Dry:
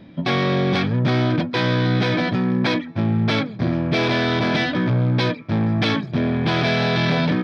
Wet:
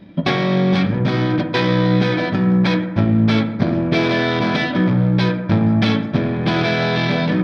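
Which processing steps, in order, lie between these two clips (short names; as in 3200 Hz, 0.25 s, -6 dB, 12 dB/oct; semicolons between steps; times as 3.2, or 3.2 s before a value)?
transient shaper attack +8 dB, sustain -2 dB; on a send: reverb RT60 1.3 s, pre-delay 5 ms, DRR 5 dB; on the sum: gain -1 dB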